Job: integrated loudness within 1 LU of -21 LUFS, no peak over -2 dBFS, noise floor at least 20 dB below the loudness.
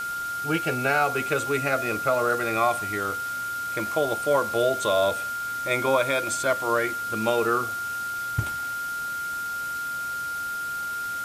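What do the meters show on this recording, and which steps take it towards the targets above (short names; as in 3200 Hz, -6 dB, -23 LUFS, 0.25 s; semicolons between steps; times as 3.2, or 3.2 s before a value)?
steady tone 1400 Hz; tone level -28 dBFS; noise floor -31 dBFS; noise floor target -46 dBFS; loudness -25.5 LUFS; peak -9.0 dBFS; loudness target -21.0 LUFS
-> notch 1400 Hz, Q 30; noise print and reduce 15 dB; gain +4.5 dB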